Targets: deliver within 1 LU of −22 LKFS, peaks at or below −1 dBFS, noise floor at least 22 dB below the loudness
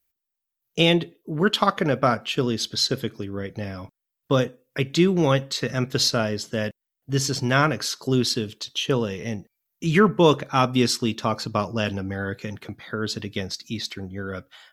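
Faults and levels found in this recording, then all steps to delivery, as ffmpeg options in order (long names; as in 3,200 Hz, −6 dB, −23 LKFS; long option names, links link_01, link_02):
integrated loudness −23.5 LKFS; sample peak −3.0 dBFS; target loudness −22.0 LKFS
→ -af "volume=1.5dB"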